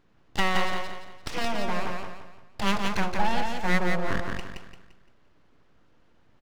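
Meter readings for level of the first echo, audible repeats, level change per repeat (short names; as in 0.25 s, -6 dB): -4.0 dB, 4, -8.5 dB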